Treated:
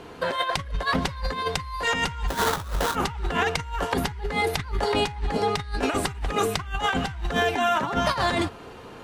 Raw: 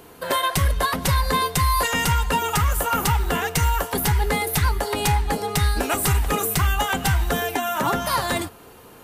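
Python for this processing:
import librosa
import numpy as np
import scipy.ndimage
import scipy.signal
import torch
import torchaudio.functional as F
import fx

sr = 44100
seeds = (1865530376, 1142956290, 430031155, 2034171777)

y = scipy.signal.sosfilt(scipy.signal.butter(2, 4800.0, 'lowpass', fs=sr, output='sos'), x)
y = fx.over_compress(y, sr, threshold_db=-25.0, ratio=-0.5)
y = fx.sample_hold(y, sr, seeds[0], rate_hz=2500.0, jitter_pct=20, at=(2.27, 2.94), fade=0.02)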